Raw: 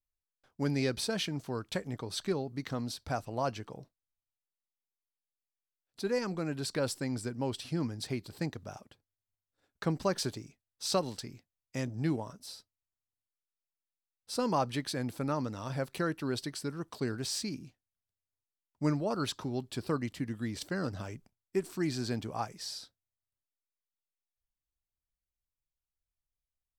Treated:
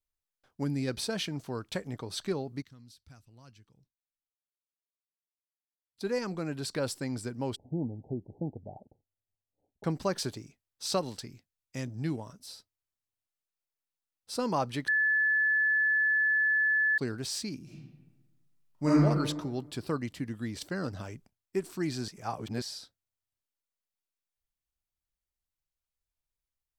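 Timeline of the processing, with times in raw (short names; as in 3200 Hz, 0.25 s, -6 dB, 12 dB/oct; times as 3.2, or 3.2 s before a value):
0.64–0.88 spectral gain 360–7000 Hz -8 dB
2.62–6.01 passive tone stack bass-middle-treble 6-0-2
7.56–9.84 steep low-pass 870 Hz 96 dB/oct
11.26–12.5 bell 710 Hz -4 dB 2.7 oct
14.88–16.98 bleep 1730 Hz -23 dBFS
17.63–19.03 reverb throw, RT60 1.2 s, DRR -8 dB
22.08–22.62 reverse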